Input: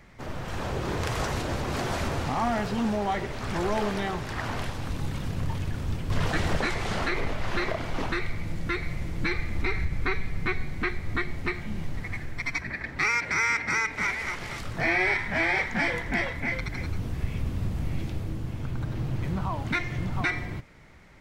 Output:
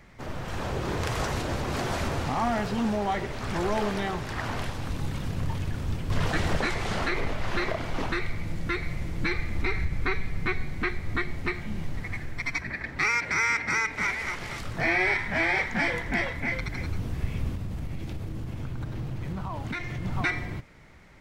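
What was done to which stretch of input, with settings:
17.55–20.05 s: compression 4:1, threshold -29 dBFS

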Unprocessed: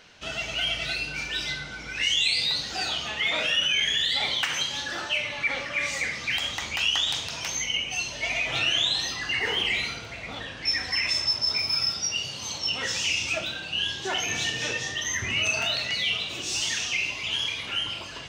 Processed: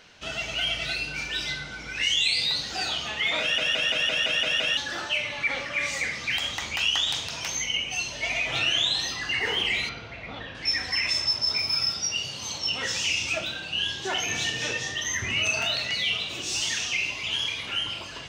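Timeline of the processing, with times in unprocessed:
3.41 s: stutter in place 0.17 s, 8 plays
9.89–10.55 s: distance through air 180 m

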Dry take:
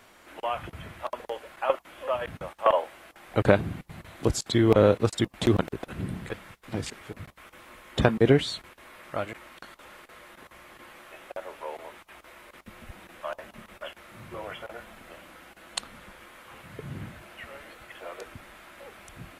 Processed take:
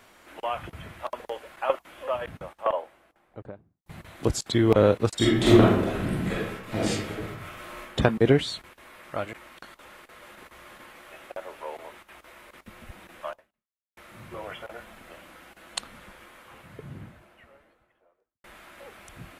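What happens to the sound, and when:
1.91–3.86 s: studio fade out
5.17–7.80 s: reverb throw, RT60 0.82 s, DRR -7.5 dB
9.75–10.40 s: echo throw 430 ms, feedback 65%, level -4 dB
13.29–13.97 s: fade out exponential
16.04–18.44 s: studio fade out

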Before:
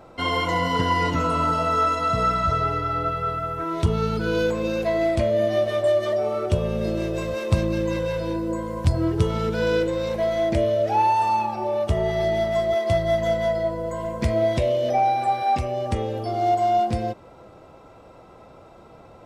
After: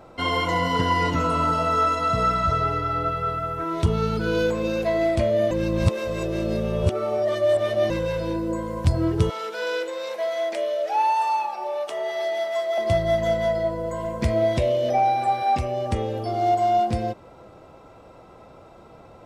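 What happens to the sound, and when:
5.51–7.90 s: reverse
9.30–12.78 s: Bessel high-pass 650 Hz, order 4

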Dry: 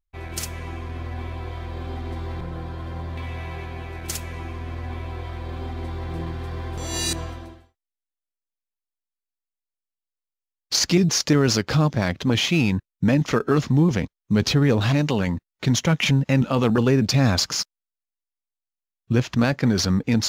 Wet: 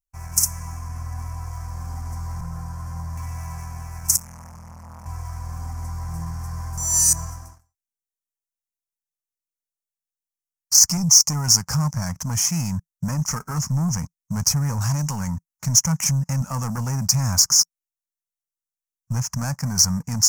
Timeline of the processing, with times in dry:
4.16–5.06 s: transformer saturation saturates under 760 Hz
10.88–11.44 s: Butterworth band-stop 1.6 kHz, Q 3.8
whole clip: waveshaping leveller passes 2; FFT filter 170 Hz 0 dB, 370 Hz -24 dB, 960 Hz +1 dB, 2.2 kHz -11 dB, 3.7 kHz -25 dB, 5.6 kHz +13 dB; trim -6.5 dB

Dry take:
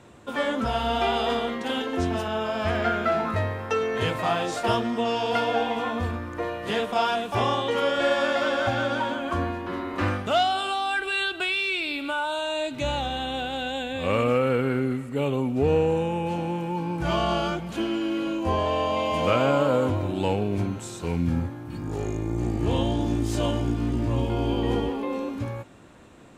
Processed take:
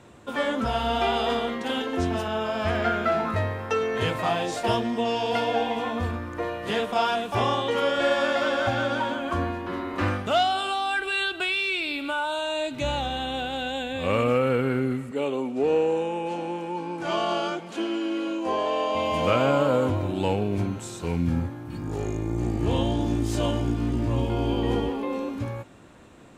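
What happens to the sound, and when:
4.29–5.97 s: peaking EQ 1.3 kHz -10 dB 0.23 oct
15.11–18.95 s: Chebyshev band-pass 320–8500 Hz

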